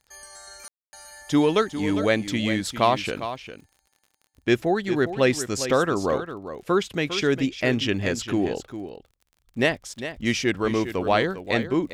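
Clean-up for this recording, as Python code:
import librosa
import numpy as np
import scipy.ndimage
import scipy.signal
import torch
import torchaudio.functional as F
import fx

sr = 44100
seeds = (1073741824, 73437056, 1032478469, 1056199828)

y = fx.fix_declick_ar(x, sr, threshold=6.5)
y = fx.fix_ambience(y, sr, seeds[0], print_start_s=3.84, print_end_s=4.34, start_s=0.68, end_s=0.93)
y = fx.fix_echo_inverse(y, sr, delay_ms=403, level_db=-11.0)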